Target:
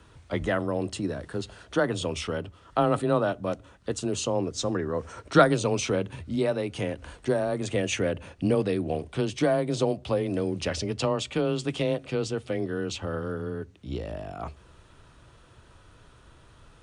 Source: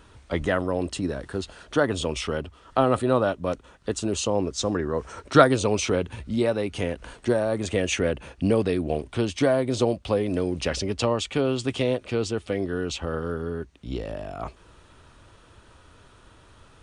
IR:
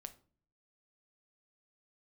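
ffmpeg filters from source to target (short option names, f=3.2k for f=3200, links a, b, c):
-filter_complex "[0:a]asplit=2[a][b];[1:a]atrim=start_sample=2205,lowshelf=f=200:g=9[c];[b][c]afir=irnorm=-1:irlink=0,volume=-8dB[d];[a][d]amix=inputs=2:normalize=0,afreqshift=17,volume=-4.5dB"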